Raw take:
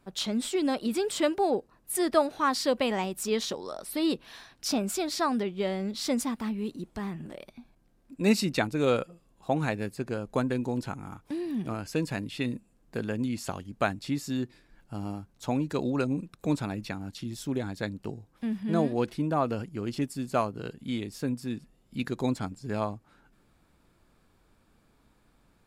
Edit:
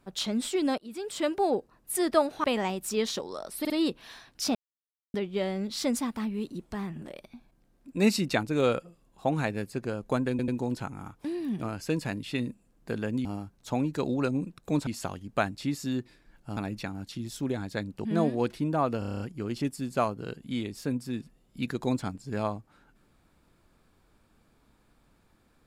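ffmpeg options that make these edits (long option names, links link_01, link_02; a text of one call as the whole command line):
ffmpeg -i in.wav -filter_complex "[0:a]asplit=20[link_01][link_02][link_03][link_04][link_05][link_06][link_07][link_08][link_09][link_10][link_11][link_12][link_13][link_14][link_15][link_16][link_17][link_18][link_19][link_20];[link_01]atrim=end=0.78,asetpts=PTS-STARTPTS,afade=type=out:start_time=0.776:duration=0.004:curve=hsin:silence=0.0707946[link_21];[link_02]atrim=start=0.78:end=2.442,asetpts=PTS-STARTPTS,afade=type=in:duration=0.65:silence=0.0707946[link_22];[link_03]atrim=start=2.778:end=3.992[link_23];[link_04]atrim=start=3.938:end=3.992[link_24];[link_05]atrim=start=3.938:end=4.79,asetpts=PTS-STARTPTS,afade=type=out:start_time=0.848:duration=0.004:curve=hsin[link_25];[link_06]atrim=start=4.79:end=5.38,asetpts=PTS-STARTPTS,volume=0[link_26];[link_07]atrim=start=5.38:end=10.632,asetpts=PTS-STARTPTS,afade=type=in:duration=0.004:curve=hsin[link_27];[link_08]atrim=start=10.538:end=10.632[link_28];[link_09]atrim=start=10.538:end=13.312[link_29];[link_10]atrim=start=15.008:end=16.632[link_30];[link_11]atrim=start=13.308:end=15.012[link_31];[link_12]atrim=start=16.628:end=18.112[link_32];[link_13]atrim=start=18.628:end=19.602[link_33];[link_14]atrim=start=19.568:end=19.602[link_34];[link_15]atrim=start=19.568:end=19.602[link_35];[link_16]atrim=start=19.568:end=19.602[link_36];[link_17]atrim=start=19.568:end=19.602[link_37];[link_18]atrim=start=19.568:end=19.602[link_38];[link_19]atrim=start=19.568:end=19.602[link_39];[link_20]atrim=start=19.568[link_40];[link_21][link_22]concat=n=2:v=0:a=1[link_41];[link_41][link_23]acrossfade=duration=0.004:curve1=hsin:curve2=hsin[link_42];[link_42][link_24]acrossfade=duration=0.004:curve1=hsin:curve2=hsin[link_43];[link_25][link_26][link_27]concat=n=3:v=0:a=1[link_44];[link_43][link_44]acrossfade=duration=0.004:curve1=hsin:curve2=hsin[link_45];[link_45][link_28]acrossfade=duration=0.004:curve1=hsin:curve2=hsin[link_46];[link_46][link_29]acrossfade=duration=0.004:curve1=hsin:curve2=hsin[link_47];[link_47][link_30]acrossfade=duration=0.004:curve1=hsin:curve2=hsin[link_48];[link_48][link_31]acrossfade=duration=0.004:curve1=hsin:curve2=hsin[link_49];[link_49][link_32]acrossfade=duration=0.004:curve1=hsin:curve2=hsin[link_50];[link_50][link_33]acrossfade=duration=0.004:curve1=hsin:curve2=hsin[link_51];[link_51][link_34]acrossfade=duration=0.004:curve1=hsin:curve2=hsin[link_52];[link_52][link_35]acrossfade=duration=0.004:curve1=hsin:curve2=hsin[link_53];[link_53][link_36]acrossfade=duration=0.004:curve1=hsin:curve2=hsin[link_54];[link_54][link_37]acrossfade=duration=0.004:curve1=hsin:curve2=hsin[link_55];[link_55][link_38]acrossfade=duration=0.004:curve1=hsin:curve2=hsin[link_56];[link_56][link_39]acrossfade=duration=0.004:curve1=hsin:curve2=hsin[link_57];[link_57][link_40]acrossfade=duration=0.004:curve1=hsin:curve2=hsin" out.wav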